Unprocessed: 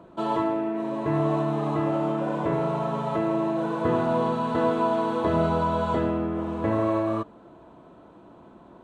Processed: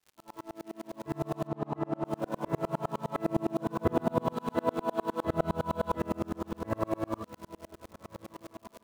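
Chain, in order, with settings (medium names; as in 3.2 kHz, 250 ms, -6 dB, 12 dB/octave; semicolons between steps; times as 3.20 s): fade-in on the opening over 1.71 s; hum notches 60/120/180/240/300/360/420 Hz; on a send: echo that smears into a reverb 1409 ms, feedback 41%, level -14.5 dB; on the sum: crackle 270 per s -35 dBFS; in parallel at -11 dB: word length cut 6-bit, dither none; 1.47–2.05 s: on the sum: low-pass 1.8 kHz 6 dB/octave; 3.25–4.33 s: bass shelf 250 Hz +7.5 dB; sawtooth tremolo in dB swelling 9.8 Hz, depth 36 dB; trim -1 dB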